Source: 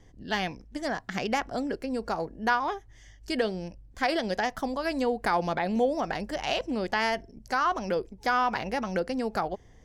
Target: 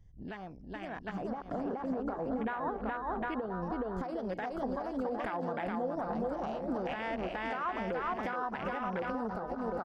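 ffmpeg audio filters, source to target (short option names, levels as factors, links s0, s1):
-filter_complex "[0:a]asplit=3[s0][s1][s2];[s0]afade=t=out:st=1.17:d=0.02[s3];[s1]lowpass=2700,afade=t=in:st=1.17:d=0.02,afade=t=out:st=3.61:d=0.02[s4];[s2]afade=t=in:st=3.61:d=0.02[s5];[s3][s4][s5]amix=inputs=3:normalize=0,aecho=1:1:420|756|1025|1240|1412:0.631|0.398|0.251|0.158|0.1,acompressor=threshold=0.0316:ratio=10,alimiter=level_in=2.11:limit=0.0631:level=0:latency=1:release=405,volume=0.473,afwtdn=0.00631,dynaudnorm=f=700:g=3:m=2.24,volume=0.841"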